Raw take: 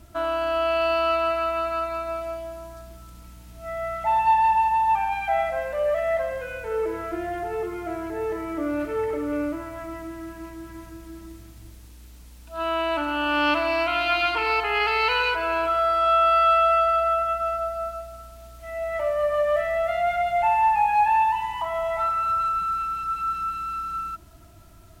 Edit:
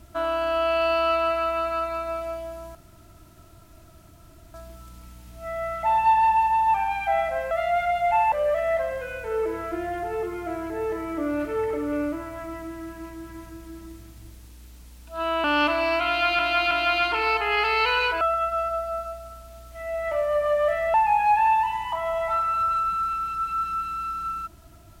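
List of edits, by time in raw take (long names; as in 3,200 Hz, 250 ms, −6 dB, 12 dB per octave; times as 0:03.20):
0:02.75: splice in room tone 1.79 s
0:12.84–0:13.31: remove
0:13.94–0:14.26: repeat, 3 plays
0:15.44–0:17.09: remove
0:19.82–0:20.63: move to 0:05.72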